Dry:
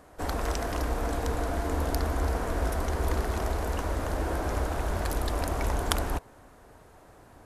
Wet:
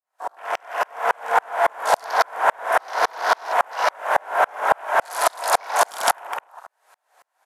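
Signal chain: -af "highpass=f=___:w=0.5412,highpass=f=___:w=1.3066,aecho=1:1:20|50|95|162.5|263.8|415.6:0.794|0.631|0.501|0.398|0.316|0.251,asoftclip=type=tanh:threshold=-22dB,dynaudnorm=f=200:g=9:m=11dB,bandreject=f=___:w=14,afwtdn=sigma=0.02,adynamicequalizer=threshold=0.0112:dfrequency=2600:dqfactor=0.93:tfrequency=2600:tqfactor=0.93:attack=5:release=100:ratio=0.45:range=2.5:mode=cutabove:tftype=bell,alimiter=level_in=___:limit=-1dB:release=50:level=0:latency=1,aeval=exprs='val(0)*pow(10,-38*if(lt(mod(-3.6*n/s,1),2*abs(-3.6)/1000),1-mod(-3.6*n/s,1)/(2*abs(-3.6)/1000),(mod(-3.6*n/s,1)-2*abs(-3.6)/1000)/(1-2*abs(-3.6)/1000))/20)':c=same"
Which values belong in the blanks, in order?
740, 740, 1.2k, 13dB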